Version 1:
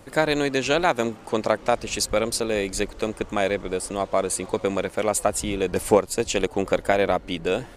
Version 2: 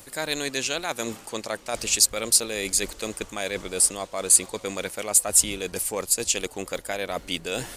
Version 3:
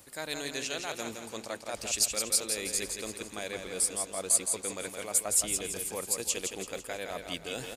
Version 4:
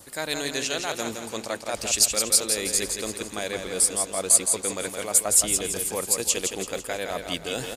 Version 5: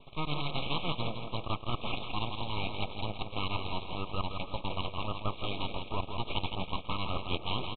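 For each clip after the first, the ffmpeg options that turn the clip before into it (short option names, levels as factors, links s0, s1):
-af "areverse,acompressor=threshold=0.0355:ratio=6,areverse,crystalizer=i=6:c=0"
-filter_complex "[0:a]highpass=41,asplit=2[s0][s1];[s1]aecho=0:1:166|332|498|664|830|996:0.501|0.231|0.106|0.0488|0.0224|0.0103[s2];[s0][s2]amix=inputs=2:normalize=0,volume=0.376"
-af "adynamicequalizer=threshold=0.00224:dfrequency=2400:dqfactor=4.8:tfrequency=2400:tqfactor=4.8:attack=5:release=100:ratio=0.375:range=2:mode=cutabove:tftype=bell,volume=2.37"
-af "aresample=8000,aeval=exprs='abs(val(0))':c=same,aresample=44100,asuperstop=centerf=1700:order=20:qfactor=1.8"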